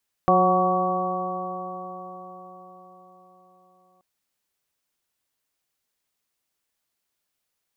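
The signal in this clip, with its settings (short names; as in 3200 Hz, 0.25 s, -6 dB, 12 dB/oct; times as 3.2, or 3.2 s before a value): stretched partials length 3.73 s, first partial 181 Hz, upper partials -0.5/2/5/-10/4 dB, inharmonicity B 0.0022, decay 4.88 s, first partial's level -23 dB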